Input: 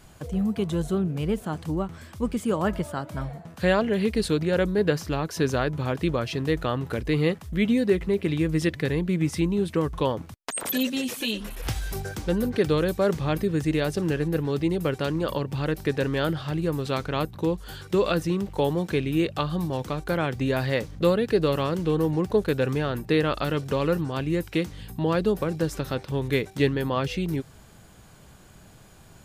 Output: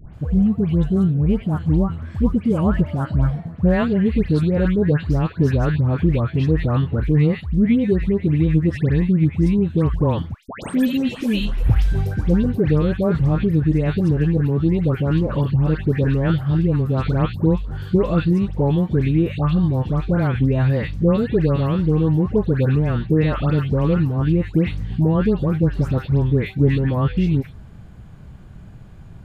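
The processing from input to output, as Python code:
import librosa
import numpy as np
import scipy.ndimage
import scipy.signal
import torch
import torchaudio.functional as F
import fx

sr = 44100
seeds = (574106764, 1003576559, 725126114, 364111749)

p1 = fx.bass_treble(x, sr, bass_db=13, treble_db=-14)
p2 = fx.rider(p1, sr, range_db=10, speed_s=0.5)
p3 = p1 + (p2 * 10.0 ** (2.5 / 20.0))
p4 = fx.dispersion(p3, sr, late='highs', ms=140.0, hz=1600.0)
y = p4 * 10.0 ** (-7.0 / 20.0)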